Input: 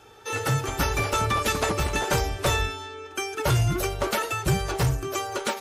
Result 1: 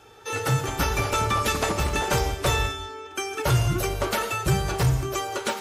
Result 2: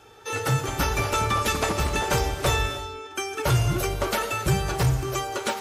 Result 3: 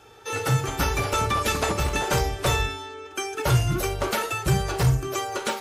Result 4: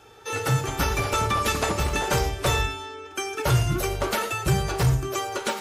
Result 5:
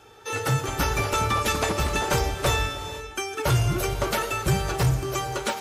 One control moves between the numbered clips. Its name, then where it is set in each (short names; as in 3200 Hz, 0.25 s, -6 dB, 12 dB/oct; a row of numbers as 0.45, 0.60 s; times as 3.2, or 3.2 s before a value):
non-linear reverb, gate: 220, 330, 90, 140, 530 ms